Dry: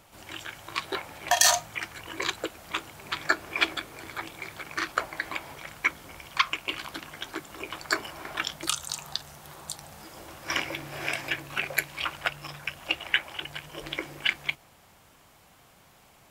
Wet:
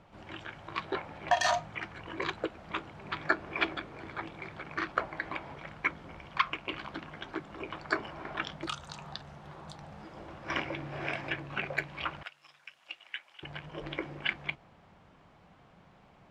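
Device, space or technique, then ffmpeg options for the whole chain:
phone in a pocket: -filter_complex "[0:a]lowpass=4k,equalizer=f=180:t=o:w=0.51:g=5.5,highshelf=f=2.1k:g=-10,asettb=1/sr,asplit=3[a][b][c];[a]atrim=end=12.234[d];[b]atrim=start=12.23:end=13.43,asetpts=PTS-STARTPTS,afade=t=in:d=0.004:c=qsin,afade=t=out:st=1.196:d=0.004:c=qsin,aderivative[e];[c]atrim=start=13.426[f];[d][e]acrossfade=d=0.004:c1=hsin:c2=qsin[g];[g][f]acrossfade=d=0.004:c1=qsin:c2=hsin"

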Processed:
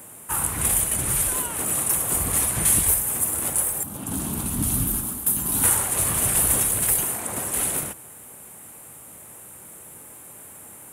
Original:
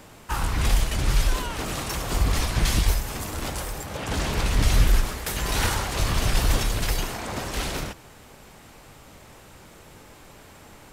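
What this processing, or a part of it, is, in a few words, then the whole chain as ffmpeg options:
budget condenser microphone: -filter_complex "[0:a]asettb=1/sr,asplit=3[a][b][c];[a]atrim=end=3.834[d];[b]atrim=start=3.83:end=5.64,asetpts=PTS-STARTPTS,afade=t=in:d=0.004:c=qsin,afade=t=out:st=1.806:d=0.004:c=qsin,equalizer=f=250:t=o:w=1:g=9,equalizer=f=500:t=o:w=1:g=-11,equalizer=f=2k:t=o:w=1:g=-12,equalizer=f=8k:t=o:w=1:g=-6[e];[c]atrim=start=5.636[f];[d][e]acrossfade=d=0.004:c1=hsin:c2=qsin[g];[g][f]acrossfade=d=0.004:c1=qsin:c2=hsin,highpass=99,highshelf=f=7.1k:t=q:w=3:g=13.5,volume=-1.5dB"

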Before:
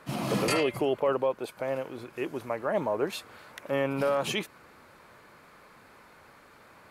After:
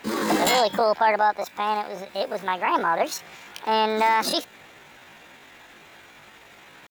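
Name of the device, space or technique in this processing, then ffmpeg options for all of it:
chipmunk voice: -af "asetrate=70004,aresample=44100,atempo=0.629961,volume=6.5dB"

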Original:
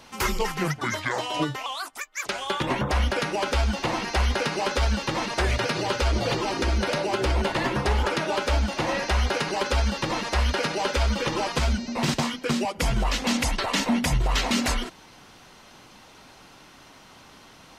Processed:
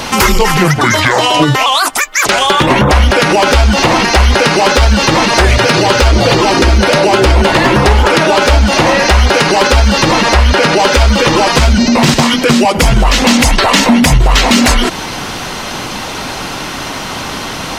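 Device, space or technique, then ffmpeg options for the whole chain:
loud club master: -filter_complex "[0:a]asettb=1/sr,asplit=3[a][b][c];[a]atrim=end=10.214[d];[b]atrim=start=10.21:end=10.8,asetpts=PTS-STARTPTS,afade=t=in:d=0.004:c=qsin,afade=t=out:st=0.586:d=0.004:c=qsin,highshelf=f=4.2k:g=-4.5[e];[c]atrim=start=10.796[f];[d][e]acrossfade=d=0.004:c1=hsin:c2=qsin[g];[g][f]acrossfade=d=0.004:c1=qsin:c2=hsin,acompressor=threshold=-26dB:ratio=2,asoftclip=type=hard:threshold=-21dB,alimiter=level_in=30dB:limit=-1dB:release=50:level=0:latency=1,volume=-1dB"

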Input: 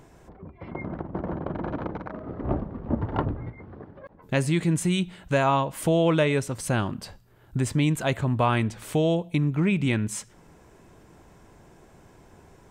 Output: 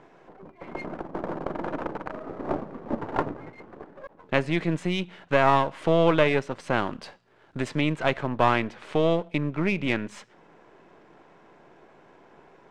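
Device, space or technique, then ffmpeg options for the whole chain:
crystal radio: -filter_complex "[0:a]highpass=330,lowpass=2.9k,aeval=exprs='if(lt(val(0),0),0.447*val(0),val(0))':c=same,lowpass=9.7k,equalizer=f=150:t=o:w=0.62:g=4,asettb=1/sr,asplit=3[a][b][c];[a]atrim=end=6.874[d];[b]atrim=start=6.87:end=7.8,asetpts=PTS-STARTPTS,afade=t=in:d=0.004:c=qsin,afade=t=out:st=0.926:d=0.004:c=qsin,highshelf=f=3.8k:g=7[e];[c]atrim=start=7.796[f];[d][e]acrossfade=d=0.004:c1=hsin:c2=qsin[g];[g][f]acrossfade=d=0.004:c1=qsin:c2=hsin,volume=5dB"

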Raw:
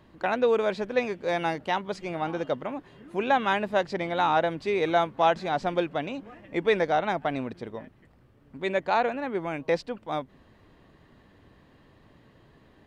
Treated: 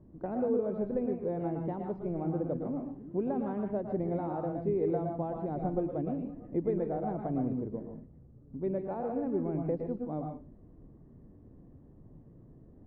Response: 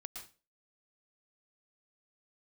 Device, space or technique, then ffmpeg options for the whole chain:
television next door: -filter_complex "[0:a]acompressor=threshold=-25dB:ratio=4,lowpass=350[a];[1:a]atrim=start_sample=2205[b];[a][b]afir=irnorm=-1:irlink=0,volume=8.5dB"

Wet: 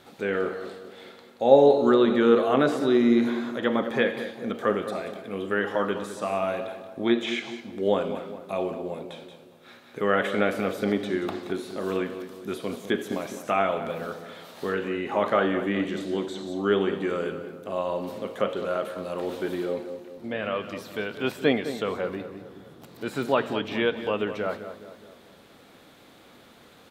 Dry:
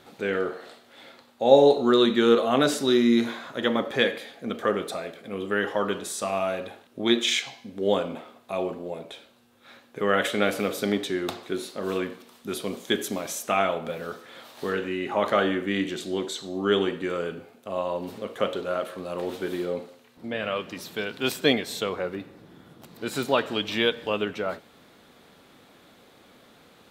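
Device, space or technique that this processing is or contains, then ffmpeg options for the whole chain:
ducked delay: -filter_complex "[0:a]asplit=3[a][b][c];[b]adelay=178,volume=-3dB[d];[c]apad=whole_len=1194567[e];[d][e]sidechaincompress=threshold=-38dB:ratio=8:attack=16:release=1270[f];[a][f]amix=inputs=2:normalize=0,acrossover=split=2600[g][h];[h]acompressor=threshold=-45dB:ratio=4:attack=1:release=60[i];[g][i]amix=inputs=2:normalize=0,asplit=2[j][k];[k]adelay=208,lowpass=f=1.5k:p=1,volume=-10.5dB,asplit=2[l][m];[m]adelay=208,lowpass=f=1.5k:p=1,volume=0.53,asplit=2[n][o];[o]adelay=208,lowpass=f=1.5k:p=1,volume=0.53,asplit=2[p][q];[q]adelay=208,lowpass=f=1.5k:p=1,volume=0.53,asplit=2[r][s];[s]adelay=208,lowpass=f=1.5k:p=1,volume=0.53,asplit=2[t][u];[u]adelay=208,lowpass=f=1.5k:p=1,volume=0.53[v];[j][l][n][p][r][t][v]amix=inputs=7:normalize=0"

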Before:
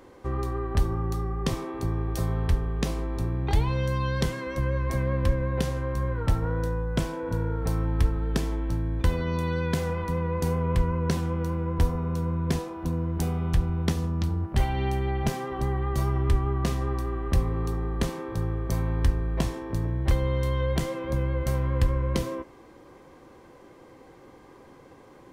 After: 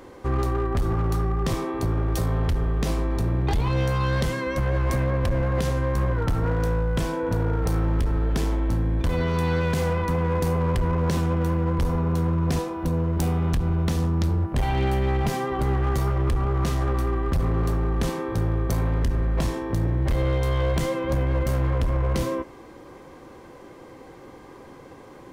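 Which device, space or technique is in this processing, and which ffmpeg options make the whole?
limiter into clipper: -af "alimiter=limit=-18.5dB:level=0:latency=1:release=63,asoftclip=type=hard:threshold=-24.5dB,volume=6dB"

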